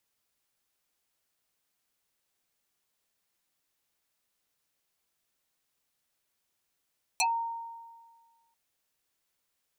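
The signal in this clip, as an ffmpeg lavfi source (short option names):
-f lavfi -i "aevalsrc='0.0794*pow(10,-3*t/1.61)*sin(2*PI*923*t+7.1*pow(10,-3*t/0.12)*sin(2*PI*1.82*923*t))':d=1.34:s=44100"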